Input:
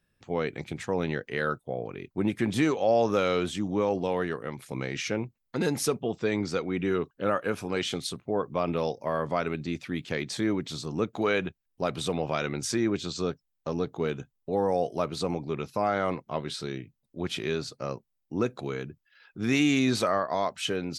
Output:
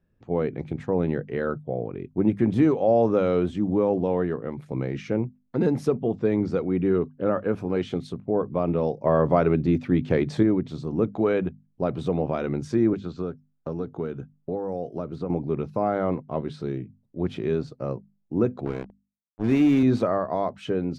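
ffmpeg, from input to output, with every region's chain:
ffmpeg -i in.wav -filter_complex "[0:a]asettb=1/sr,asplit=3[link_01][link_02][link_03];[link_01]atrim=end=9.044[link_04];[link_02]atrim=start=9.04:end=10.43,asetpts=PTS-STARTPTS,afade=type=in:duration=0.004:curve=qsin,afade=type=out:start_time=1.386:duration=0.004:curve=qsin,equalizer=frequency=220:width_type=o:width=0.35:gain=-3.5,acontrast=57[link_05];[link_03]atrim=start=10.426[link_06];[link_04][link_05]acrossfade=duration=0.004:curve1=hsin:curve2=qsin[link_07];[link_07][link_06]acrossfade=duration=0.004:curve1=qsin:curve2=hsin,asettb=1/sr,asplit=3[link_08][link_09][link_10];[link_08]atrim=end=12.934[link_11];[link_09]atrim=start=12.93:end=15.3,asetpts=PTS-STARTPTS,afade=type=in:duration=0.004:curve=qsin,afade=type=out:start_time=2.366:duration=0.004:curve=qsin,equalizer=frequency=1400:width=3.8:gain=7,acrossover=split=560|4200[link_12][link_13][link_14];[link_12]acompressor=threshold=-34dB:ratio=4[link_15];[link_13]acompressor=threshold=-40dB:ratio=4[link_16];[link_14]acompressor=threshold=-52dB:ratio=4[link_17];[link_15][link_16][link_17]amix=inputs=3:normalize=0[link_18];[link_10]atrim=start=15.296[link_19];[link_11][link_18]acrossfade=duration=0.004:curve1=hsin:curve2=qsin[link_20];[link_20][link_19]acrossfade=duration=0.004:curve1=qsin:curve2=hsin,asettb=1/sr,asplit=3[link_21][link_22][link_23];[link_21]atrim=end=18.654[link_24];[link_22]atrim=start=18.65:end=19.83,asetpts=PTS-STARTPTS,afade=type=in:duration=0.004:curve=qsin,afade=type=out:start_time=1.176:duration=0.004:curve=qsin,highpass=frequency=120:poles=1,acrusher=bits=4:mix=0:aa=0.5[link_25];[link_23]atrim=start=19.826[link_26];[link_24][link_25]acrossfade=duration=0.004:curve1=hsin:curve2=qsin[link_27];[link_27][link_26]acrossfade=duration=0.004:curve1=qsin:curve2=hsin,lowpass=frequency=2300:poles=1,tiltshelf=frequency=970:gain=7.5,bandreject=frequency=50:width_type=h:width=6,bandreject=frequency=100:width_type=h:width=6,bandreject=frequency=150:width_type=h:width=6,bandreject=frequency=200:width_type=h:width=6,bandreject=frequency=250:width_type=h:width=6" out.wav

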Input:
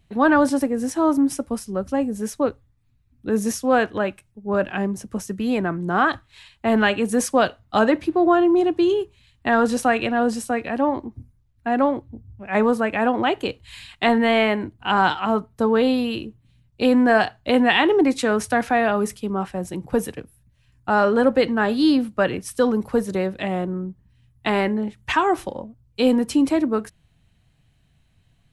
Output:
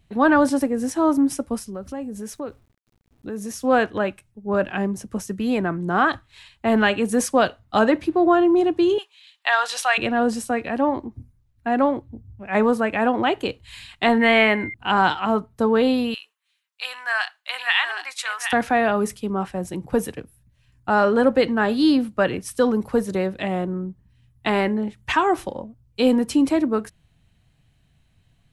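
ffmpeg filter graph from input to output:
ffmpeg -i in.wav -filter_complex "[0:a]asettb=1/sr,asplit=3[link_01][link_02][link_03];[link_01]atrim=end=1.684[link_04];[link_02]atrim=start=1.68:end=3.64,asetpts=PTS-STARTPTS,afade=type=in:duration=0.004:curve=qsin,afade=type=out:start_time=1.956:duration=0.004:curve=qsin,acompressor=threshold=-31dB:ratio=2.5:attack=3.2:release=140:knee=1:detection=peak,aeval=exprs='val(0)*gte(abs(val(0)),0.00119)':channel_layout=same[link_05];[link_03]atrim=start=3.636[link_06];[link_04][link_05]acrossfade=duration=0.004:curve1=hsin:curve2=qsin[link_07];[link_07][link_06]acrossfade=duration=0.004:curve1=qsin:curve2=hsin,asettb=1/sr,asplit=3[link_08][link_09][link_10];[link_08]atrim=end=8.984[link_11];[link_09]atrim=start=8.98:end=9.98,asetpts=PTS-STARTPTS,afade=type=in:duration=0.004:curve=qsin,afade=type=out:start_time=0.996:duration=0.004:curve=qsin,highpass=frequency=750:width=0.5412,highpass=frequency=750:width=1.3066,equalizer=frequency=3500:width_type=o:width=1.4:gain=10.5[link_12];[link_10]atrim=start=9.976[link_13];[link_11][link_12]acrossfade=duration=0.004:curve1=hsin:curve2=qsin[link_14];[link_14][link_13]acrossfade=duration=0.004:curve1=qsin:curve2=hsin,asettb=1/sr,asplit=3[link_15][link_16][link_17];[link_15]atrim=end=14.214[link_18];[link_16]atrim=start=14.21:end=14.74,asetpts=PTS-STARTPTS,afade=type=in:duration=0.004:curve=qsin,afade=type=out:start_time=0.526:duration=0.004:curve=qsin,equalizer=frequency=2000:width_type=o:width=1:gain=6.5,aeval=exprs='val(0)+0.0316*sin(2*PI*2100*n/s)':channel_layout=same[link_19];[link_17]atrim=start=14.736[link_20];[link_18][link_19]acrossfade=duration=0.004:curve1=hsin:curve2=qsin[link_21];[link_21][link_20]acrossfade=duration=0.004:curve1=qsin:curve2=hsin,asettb=1/sr,asplit=3[link_22][link_23][link_24];[link_22]atrim=end=16.144[link_25];[link_23]atrim=start=16.14:end=18.53,asetpts=PTS-STARTPTS,afade=type=in:duration=0.004:curve=qsin,afade=type=out:start_time=2.386:duration=0.004:curve=qsin,highpass=frequency=1100:width=0.5412,highpass=frequency=1100:width=1.3066,aecho=1:1:764:0.447,atrim=end_sample=105399[link_26];[link_24]atrim=start=18.526[link_27];[link_25][link_26]acrossfade=duration=0.004:curve1=hsin:curve2=qsin[link_28];[link_28][link_27]acrossfade=duration=0.004:curve1=qsin:curve2=hsin" out.wav

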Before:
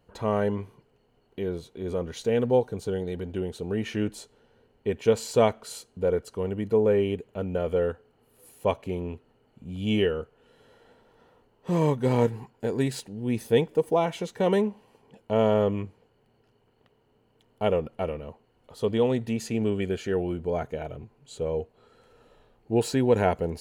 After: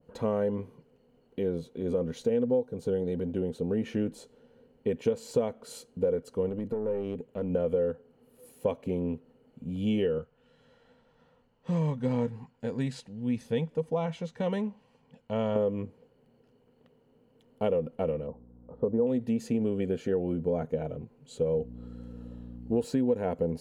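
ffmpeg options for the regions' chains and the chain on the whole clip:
ffmpeg -i in.wav -filter_complex "[0:a]asettb=1/sr,asplit=3[link_01][link_02][link_03];[link_01]atrim=end=6.494[link_04];[link_02]atrim=start=6.49:end=7.5,asetpts=PTS-STARTPTS,afade=type=in:duration=0.004:curve=qsin,afade=type=out:start_time=1.006:duration=0.004:curve=qsin,acompressor=threshold=-26dB:ratio=10:attack=3.2:release=140:knee=1:detection=peak,aeval=exprs='(tanh(20*val(0)+0.5)-tanh(0.5))/20':channel_layout=same[link_05];[link_03]atrim=start=7.496[link_06];[link_04][link_05]acrossfade=duration=0.004:curve1=hsin:curve2=qsin[link_07];[link_07][link_06]acrossfade=duration=0.004:curve1=qsin:curve2=hsin,asettb=1/sr,asplit=3[link_08][link_09][link_10];[link_08]atrim=end=10.184[link_11];[link_09]atrim=start=10.18:end=15.56,asetpts=PTS-STARTPTS,afade=type=in:duration=0.004:curve=qsin,afade=type=out:start_time=5.376:duration=0.004:curve=qsin,lowpass=6800,equalizer=frequency=370:width=0.93:gain=-12.5[link_12];[link_10]atrim=start=15.556[link_13];[link_11][link_12]acrossfade=duration=0.004:curve1=hsin:curve2=qsin[link_14];[link_14][link_13]acrossfade=duration=0.004:curve1=qsin:curve2=hsin,asettb=1/sr,asplit=3[link_15][link_16][link_17];[link_15]atrim=end=18.274[link_18];[link_16]atrim=start=18.27:end=19.07,asetpts=PTS-STARTPTS,afade=type=in:duration=0.004:curve=qsin,afade=type=out:start_time=0.796:duration=0.004:curve=qsin,lowpass=frequency=1200:width=0.5412,lowpass=frequency=1200:width=1.3066,aeval=exprs='val(0)+0.00251*(sin(2*PI*60*n/s)+sin(2*PI*2*60*n/s)/2+sin(2*PI*3*60*n/s)/3+sin(2*PI*4*60*n/s)/4+sin(2*PI*5*60*n/s)/5)':channel_layout=same[link_19];[link_17]atrim=start=19.066[link_20];[link_18][link_19]acrossfade=duration=0.004:curve1=hsin:curve2=qsin[link_21];[link_21][link_20]acrossfade=duration=0.004:curve1=qsin:curve2=hsin,asettb=1/sr,asplit=3[link_22][link_23][link_24];[link_22]atrim=end=21.544[link_25];[link_23]atrim=start=21.54:end=22.85,asetpts=PTS-STARTPTS,afade=type=in:duration=0.004:curve=qsin,afade=type=out:start_time=1.306:duration=0.004:curve=qsin,equalizer=frequency=2300:width_type=o:width=0.24:gain=-6,aeval=exprs='val(0)+0.00891*(sin(2*PI*60*n/s)+sin(2*PI*2*60*n/s)/2+sin(2*PI*3*60*n/s)/3+sin(2*PI*4*60*n/s)/4+sin(2*PI*5*60*n/s)/5)':channel_layout=same[link_26];[link_24]atrim=start=22.846[link_27];[link_25][link_26]acrossfade=duration=0.004:curve1=hsin:curve2=qsin[link_28];[link_28][link_27]acrossfade=duration=0.004:curve1=qsin:curve2=hsin,equalizer=frequency=160:width_type=o:width=0.33:gain=10,equalizer=frequency=250:width_type=o:width=0.33:gain=12,equalizer=frequency=500:width_type=o:width=0.33:gain=11,acompressor=threshold=-20dB:ratio=5,adynamicequalizer=threshold=0.00631:dfrequency=1500:dqfactor=0.7:tfrequency=1500:tqfactor=0.7:attack=5:release=100:ratio=0.375:range=2.5:mode=cutabove:tftype=highshelf,volume=-4dB" out.wav

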